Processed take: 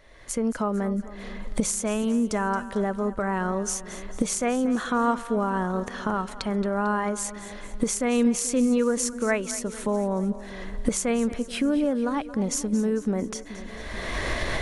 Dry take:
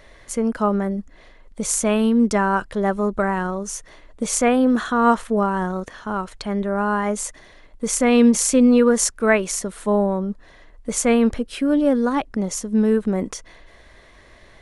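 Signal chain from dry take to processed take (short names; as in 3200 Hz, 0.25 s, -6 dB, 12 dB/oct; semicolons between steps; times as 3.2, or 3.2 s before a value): recorder AGC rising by 29 dB/s; split-band echo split 480 Hz, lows 0.432 s, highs 0.224 s, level -15 dB; gain -8 dB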